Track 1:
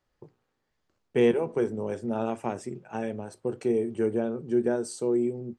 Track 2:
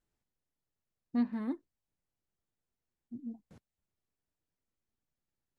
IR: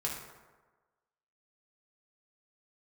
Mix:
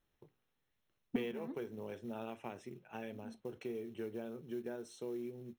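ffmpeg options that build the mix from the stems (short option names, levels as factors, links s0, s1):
-filter_complex "[0:a]equalizer=f=3000:w=0.97:g=10,acrusher=bits=6:mode=log:mix=0:aa=0.000001,acompressor=threshold=0.0447:ratio=3,volume=0.237,asplit=2[s0][s1];[1:a]volume=1.41[s2];[s1]apad=whole_len=246152[s3];[s2][s3]sidechaincompress=threshold=0.00251:ratio=8:attack=16:release=1090[s4];[s0][s4]amix=inputs=2:normalize=0,asuperstop=centerf=4700:order=20:qfactor=6.5,equalizer=f=7800:w=2.7:g=-11.5"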